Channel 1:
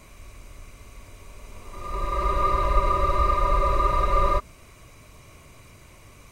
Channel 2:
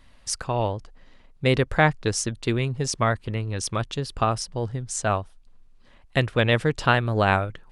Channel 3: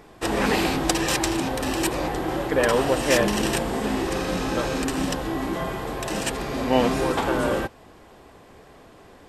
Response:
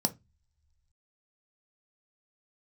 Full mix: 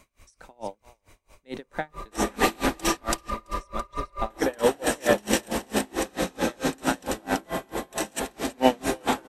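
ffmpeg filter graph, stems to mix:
-filter_complex "[0:a]volume=-3.5dB[link_01];[1:a]highpass=210,volume=-10.5dB,asplit=3[link_02][link_03][link_04];[link_03]volume=-5.5dB[link_05];[link_04]volume=-13.5dB[link_06];[2:a]highshelf=frequency=8500:gain=7.5,adelay=1900,volume=2dB,asplit=3[link_07][link_08][link_09];[link_07]atrim=end=2.97,asetpts=PTS-STARTPTS,afade=type=out:start_time=2.966:duration=0.004:curve=hsin[link_10];[link_08]atrim=start=2.97:end=4.3,asetpts=PTS-STARTPTS,volume=0[link_11];[link_09]atrim=start=4.3,asetpts=PTS-STARTPTS,afade=type=in:duration=0.004:curve=hsin[link_12];[link_10][link_11][link_12]concat=n=3:v=0:a=1,asplit=3[link_13][link_14][link_15];[link_14]volume=-16dB[link_16];[link_15]volume=-6.5dB[link_17];[3:a]atrim=start_sample=2205[link_18];[link_05][link_16]amix=inputs=2:normalize=0[link_19];[link_19][link_18]afir=irnorm=-1:irlink=0[link_20];[link_06][link_17]amix=inputs=2:normalize=0,aecho=0:1:333|666|999|1332|1665:1|0.32|0.102|0.0328|0.0105[link_21];[link_01][link_02][link_13][link_20][link_21]amix=inputs=5:normalize=0,lowshelf=frequency=440:gain=-5,aeval=exprs='val(0)*pow(10,-32*(0.5-0.5*cos(2*PI*4.5*n/s))/20)':channel_layout=same"

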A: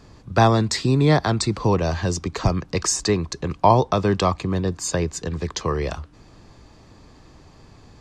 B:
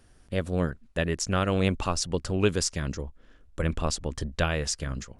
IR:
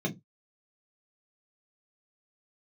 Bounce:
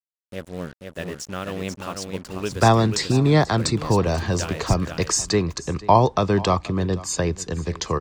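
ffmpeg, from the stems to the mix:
-filter_complex "[0:a]adelay=2250,volume=0dB,asplit=2[link_01][link_02];[link_02]volume=-19.5dB[link_03];[1:a]highpass=120,acrusher=bits=5:mix=0:aa=0.5,volume=-4.5dB,asplit=2[link_04][link_05];[link_05]volume=-5dB[link_06];[link_03][link_06]amix=inputs=2:normalize=0,aecho=0:1:487:1[link_07];[link_01][link_04][link_07]amix=inputs=3:normalize=0"

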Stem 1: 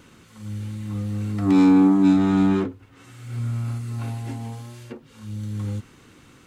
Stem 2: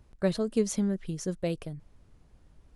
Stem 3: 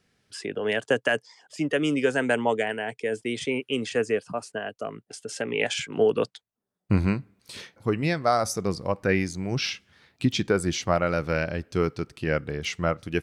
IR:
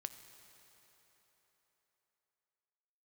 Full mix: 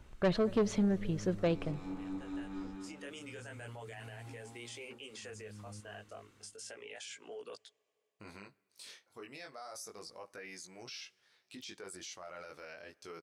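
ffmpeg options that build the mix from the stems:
-filter_complex "[0:a]volume=-14.5dB,asplit=2[link_01][link_02];[link_02]volume=-11.5dB[link_03];[1:a]lowpass=3000,volume=3dB,asplit=4[link_04][link_05][link_06][link_07];[link_05]volume=-8dB[link_08];[link_06]volume=-23.5dB[link_09];[2:a]bass=frequency=250:gain=-15,treble=frequency=4000:gain=7,flanger=delay=16.5:depth=5.4:speed=0.32,adelay=1300,volume=-11dB,asplit=2[link_10][link_11];[link_11]volume=-21.5dB[link_12];[link_07]apad=whole_len=640436[link_13];[link_10][link_13]sidechaincompress=threshold=-45dB:ratio=8:attack=16:release=908[link_14];[link_01][link_14]amix=inputs=2:normalize=0,alimiter=level_in=14dB:limit=-24dB:level=0:latency=1:release=32,volume=-14dB,volume=0dB[link_15];[3:a]atrim=start_sample=2205[link_16];[link_08][link_12]amix=inputs=2:normalize=0[link_17];[link_17][link_16]afir=irnorm=-1:irlink=0[link_18];[link_03][link_09]amix=inputs=2:normalize=0,aecho=0:1:232|464|696|928|1160|1392|1624|1856:1|0.53|0.281|0.149|0.0789|0.0418|0.0222|0.0117[link_19];[link_04][link_15][link_18][link_19]amix=inputs=4:normalize=0,equalizer=frequency=130:width=0.33:gain=-5,asoftclip=type=tanh:threshold=-23dB"

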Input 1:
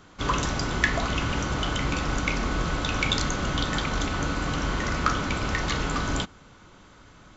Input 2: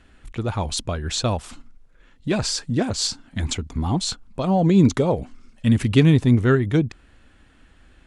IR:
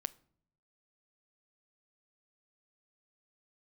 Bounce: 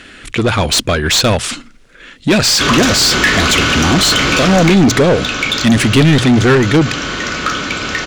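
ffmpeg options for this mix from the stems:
-filter_complex "[0:a]bandreject=frequency=2000:width=18,adelay=2400,volume=-0.5dB,afade=type=out:start_time=4.61:duration=0.27:silence=0.334965[link_01];[1:a]bandreject=frequency=60:width_type=h:width=6,bandreject=frequency=120:width_type=h:width=6,volume=0dB[link_02];[link_01][link_02]amix=inputs=2:normalize=0,equalizer=frequency=880:width=1.3:gain=-12,acontrast=71,asplit=2[link_03][link_04];[link_04]highpass=frequency=720:poles=1,volume=26dB,asoftclip=type=tanh:threshold=-2dB[link_05];[link_03][link_05]amix=inputs=2:normalize=0,lowpass=frequency=4800:poles=1,volume=-6dB"

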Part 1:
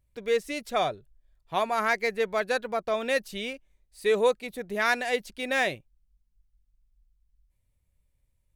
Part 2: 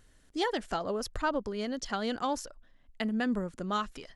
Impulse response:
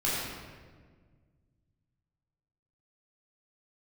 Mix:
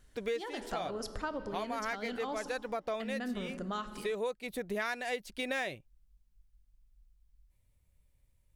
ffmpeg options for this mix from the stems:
-filter_complex "[0:a]volume=2dB[link_01];[1:a]volume=-4dB,asplit=3[link_02][link_03][link_04];[link_03]volume=-19.5dB[link_05];[link_04]apad=whole_len=377107[link_06];[link_01][link_06]sidechaincompress=threshold=-41dB:ratio=8:attack=49:release=895[link_07];[2:a]atrim=start_sample=2205[link_08];[link_05][link_08]afir=irnorm=-1:irlink=0[link_09];[link_07][link_02][link_09]amix=inputs=3:normalize=0,acompressor=threshold=-33dB:ratio=5"

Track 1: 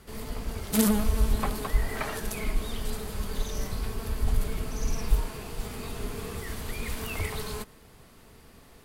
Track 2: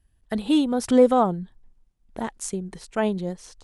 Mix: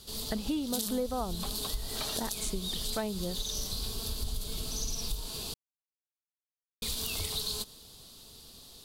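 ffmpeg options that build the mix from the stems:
ffmpeg -i stem1.wav -i stem2.wav -filter_complex "[0:a]highshelf=frequency=2800:width_type=q:width=3:gain=11,volume=-4.5dB,asplit=3[link_01][link_02][link_03];[link_01]atrim=end=5.54,asetpts=PTS-STARTPTS,afade=type=out:start_time=5.536:duration=0.004:curve=hsin[link_04];[link_02]atrim=start=5.54:end=6.82,asetpts=PTS-STARTPTS,volume=0[link_05];[link_03]atrim=start=6.82,asetpts=PTS-STARTPTS,afade=type=in:duration=0.004:curve=hsin[link_06];[link_04][link_05][link_06]concat=n=3:v=0:a=1[link_07];[1:a]volume=-1.5dB[link_08];[link_07][link_08]amix=inputs=2:normalize=0,acompressor=threshold=-30dB:ratio=6" out.wav

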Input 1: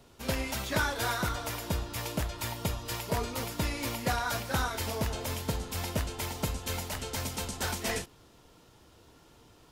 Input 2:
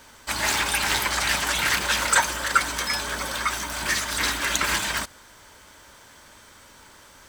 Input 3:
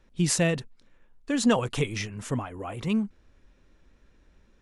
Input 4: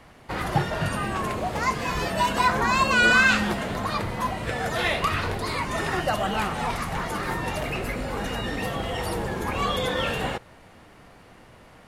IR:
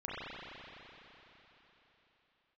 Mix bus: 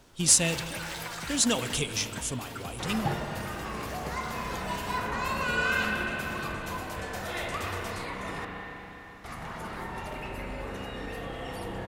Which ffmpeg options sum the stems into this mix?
-filter_complex "[0:a]acompressor=threshold=-41dB:ratio=3,volume=-1.5dB[link_01];[1:a]volume=-15.5dB,afade=type=out:start_time=1.58:duration=0.3:silence=0.375837[link_02];[2:a]aexciter=amount=3.6:drive=6.8:freq=2700,volume=-7.5dB,asplit=3[link_03][link_04][link_05];[link_04]volume=-12.5dB[link_06];[3:a]adelay=2500,volume=-9dB,asplit=3[link_07][link_08][link_09];[link_07]atrim=end=8.45,asetpts=PTS-STARTPTS,afade=type=out:start_time=8.446:duration=0.004:curve=hsin[link_10];[link_08]atrim=start=8.45:end=9.24,asetpts=PTS-STARTPTS,volume=0[link_11];[link_09]atrim=start=9.24,asetpts=PTS-STARTPTS,afade=type=in:duration=0.004:curve=hsin[link_12];[link_10][link_11][link_12]concat=n=3:v=0:a=1,asplit=2[link_13][link_14];[link_14]volume=-6.5dB[link_15];[link_05]apad=whole_len=633768[link_16];[link_13][link_16]sidechaingate=range=-7dB:threshold=-56dB:ratio=16:detection=peak[link_17];[4:a]atrim=start_sample=2205[link_18];[link_06][link_15]amix=inputs=2:normalize=0[link_19];[link_19][link_18]afir=irnorm=-1:irlink=0[link_20];[link_01][link_02][link_03][link_17][link_20]amix=inputs=5:normalize=0"

